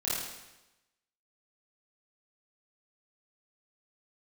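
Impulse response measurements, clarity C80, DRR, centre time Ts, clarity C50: 1.5 dB, −9.5 dB, 83 ms, −2.5 dB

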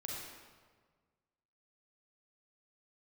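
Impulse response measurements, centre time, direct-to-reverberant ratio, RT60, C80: 96 ms, −3.5 dB, 1.6 s, 1.0 dB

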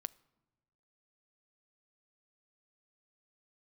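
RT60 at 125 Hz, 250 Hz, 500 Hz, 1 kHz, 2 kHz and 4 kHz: 1.5, 1.3, 1.2, 1.1, 0.85, 0.60 seconds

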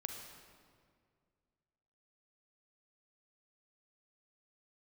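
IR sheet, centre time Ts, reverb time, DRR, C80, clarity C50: 54 ms, 2.1 s, 3.5 dB, 5.5 dB, 4.0 dB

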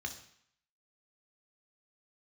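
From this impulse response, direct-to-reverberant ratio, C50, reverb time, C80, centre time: 4.0 dB, 10.0 dB, 0.65 s, 13.0 dB, 13 ms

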